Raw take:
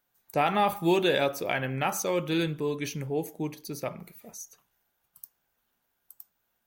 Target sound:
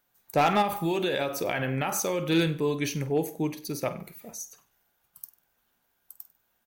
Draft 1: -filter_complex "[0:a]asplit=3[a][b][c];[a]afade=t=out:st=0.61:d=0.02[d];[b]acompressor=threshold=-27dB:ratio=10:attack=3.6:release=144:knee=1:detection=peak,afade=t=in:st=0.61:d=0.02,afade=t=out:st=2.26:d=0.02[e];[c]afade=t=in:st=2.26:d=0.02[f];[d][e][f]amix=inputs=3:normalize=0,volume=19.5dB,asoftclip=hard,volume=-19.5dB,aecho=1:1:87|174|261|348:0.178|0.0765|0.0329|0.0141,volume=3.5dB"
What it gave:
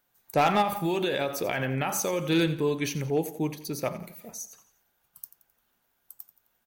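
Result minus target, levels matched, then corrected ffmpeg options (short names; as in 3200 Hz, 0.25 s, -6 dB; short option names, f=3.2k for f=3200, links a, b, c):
echo 38 ms late
-filter_complex "[0:a]asplit=3[a][b][c];[a]afade=t=out:st=0.61:d=0.02[d];[b]acompressor=threshold=-27dB:ratio=10:attack=3.6:release=144:knee=1:detection=peak,afade=t=in:st=0.61:d=0.02,afade=t=out:st=2.26:d=0.02[e];[c]afade=t=in:st=2.26:d=0.02[f];[d][e][f]amix=inputs=3:normalize=0,volume=19.5dB,asoftclip=hard,volume=-19.5dB,aecho=1:1:49|98|147|196:0.178|0.0765|0.0329|0.0141,volume=3.5dB"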